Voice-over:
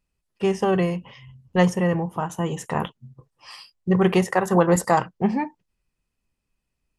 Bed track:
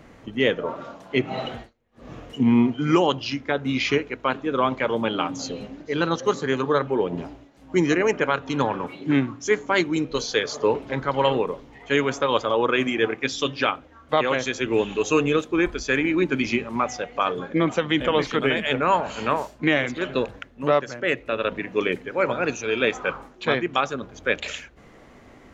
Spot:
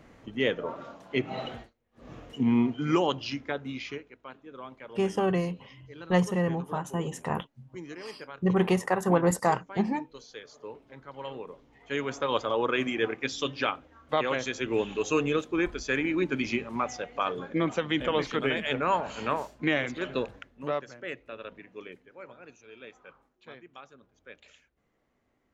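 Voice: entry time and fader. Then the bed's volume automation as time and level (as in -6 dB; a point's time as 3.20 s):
4.55 s, -5.5 dB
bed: 3.41 s -6 dB
4.18 s -21.5 dB
11.01 s -21.5 dB
12.32 s -6 dB
20.16 s -6 dB
22.43 s -25.5 dB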